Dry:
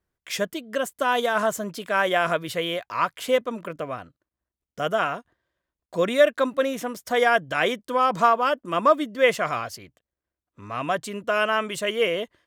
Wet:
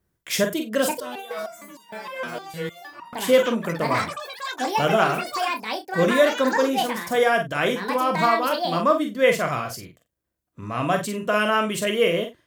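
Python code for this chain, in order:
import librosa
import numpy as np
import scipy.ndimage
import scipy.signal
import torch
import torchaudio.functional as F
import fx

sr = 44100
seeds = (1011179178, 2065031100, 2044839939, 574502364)

y = fx.high_shelf(x, sr, hz=8100.0, db=8.5)
y = fx.rider(y, sr, range_db=5, speed_s=2.0)
y = fx.peak_eq(y, sr, hz=140.0, db=7.5, octaves=2.8)
y = fx.doubler(y, sr, ms=42.0, db=-12)
y = fx.room_early_taps(y, sr, ms=(23, 48), db=(-12.0, -7.0))
y = fx.echo_pitch(y, sr, ms=617, semitones=7, count=3, db_per_echo=-6.0)
y = fx.resonator_held(y, sr, hz=6.5, low_hz=120.0, high_hz=940.0, at=(1.0, 3.13))
y = y * 10.0 ** (-2.0 / 20.0)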